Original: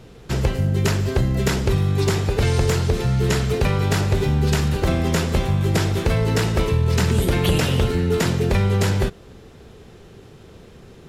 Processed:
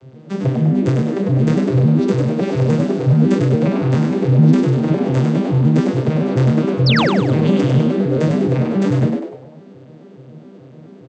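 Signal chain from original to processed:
vocoder with an arpeggio as carrier minor triad, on C3, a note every 141 ms
sound drawn into the spectrogram fall, 0:06.86–0:07.11, 290–5,700 Hz −24 dBFS
echo with shifted repeats 99 ms, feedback 40%, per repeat +97 Hz, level −4.5 dB
level +5.5 dB

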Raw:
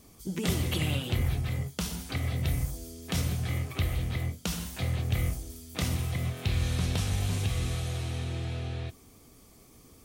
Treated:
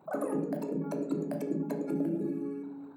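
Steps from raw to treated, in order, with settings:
expanding power law on the bin magnitudes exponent 2.1
change of speed 3.39×
high-pass filter 160 Hz 12 dB per octave
on a send: convolution reverb RT60 0.75 s, pre-delay 12 ms, DRR 3 dB
on the sum: level −4 dB

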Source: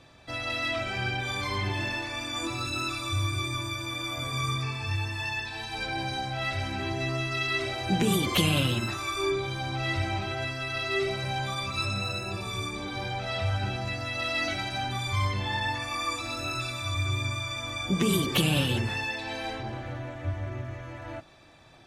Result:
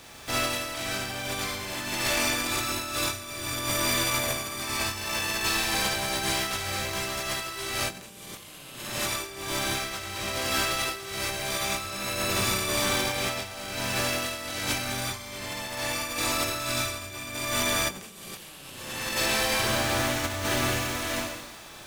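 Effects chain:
compressing power law on the bin magnitudes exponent 0.39
four-comb reverb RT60 1.1 s, combs from 29 ms, DRR −1.5 dB
compressor whose output falls as the input rises −31 dBFS, ratio −0.5
level +1.5 dB

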